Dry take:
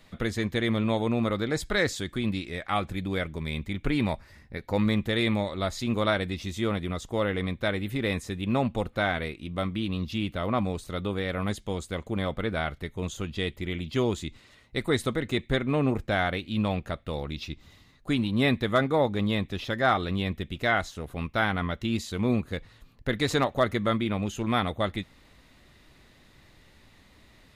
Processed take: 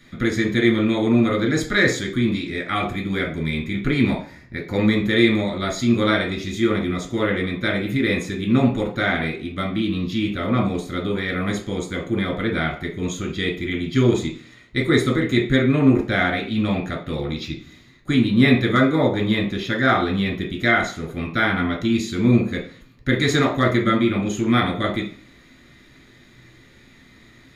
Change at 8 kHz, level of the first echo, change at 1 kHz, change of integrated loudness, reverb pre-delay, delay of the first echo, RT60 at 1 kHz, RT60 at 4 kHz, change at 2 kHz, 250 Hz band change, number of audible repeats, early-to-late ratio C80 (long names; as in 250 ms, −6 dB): +6.5 dB, no echo audible, +4.5 dB, +7.5 dB, 3 ms, no echo audible, 0.50 s, 0.40 s, +8.5 dB, +9.5 dB, no echo audible, 13.5 dB